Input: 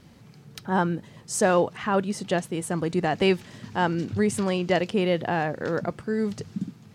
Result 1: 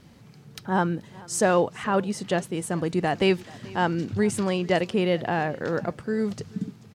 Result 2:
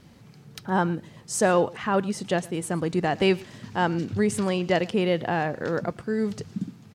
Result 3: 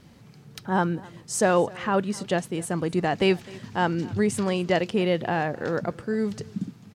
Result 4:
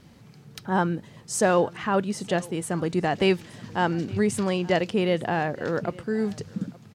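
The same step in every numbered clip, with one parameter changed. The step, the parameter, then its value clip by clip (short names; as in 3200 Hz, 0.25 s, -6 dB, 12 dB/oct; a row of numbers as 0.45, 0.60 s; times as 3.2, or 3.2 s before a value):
echo, time: 0.434, 0.114, 0.258, 0.868 s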